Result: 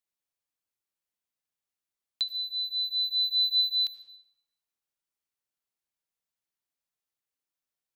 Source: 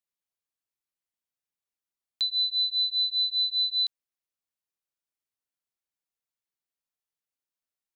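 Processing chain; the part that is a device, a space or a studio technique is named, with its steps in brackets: 2.22–3.6 bell 3800 Hz -8.5 dB -> +3 dB; saturated reverb return (on a send at -10 dB: reverb RT60 0.85 s, pre-delay 69 ms + soft clip -32.5 dBFS, distortion -9 dB)

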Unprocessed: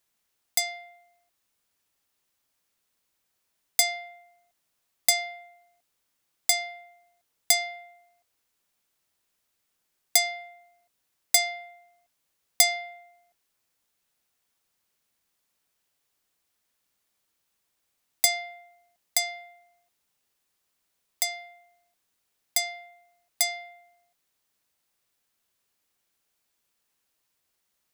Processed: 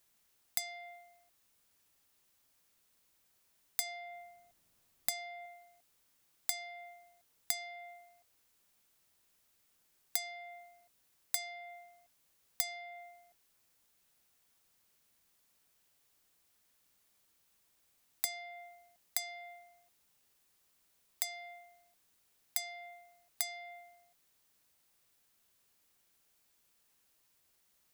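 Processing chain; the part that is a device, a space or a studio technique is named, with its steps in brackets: 3.86–5.46 low shelf 410 Hz +8 dB; ASMR close-microphone chain (low shelf 220 Hz +3.5 dB; compressor 6:1, threshold -38 dBFS, peak gain reduction 22 dB; high shelf 8300 Hz +3.5 dB); gain +1.5 dB

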